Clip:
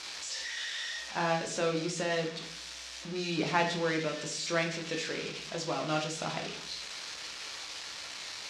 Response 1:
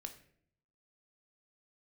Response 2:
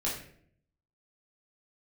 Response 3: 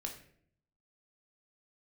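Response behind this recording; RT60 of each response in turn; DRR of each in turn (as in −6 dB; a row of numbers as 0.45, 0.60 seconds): 3; 0.60, 0.60, 0.60 seconds; 6.0, −6.0, 2.0 decibels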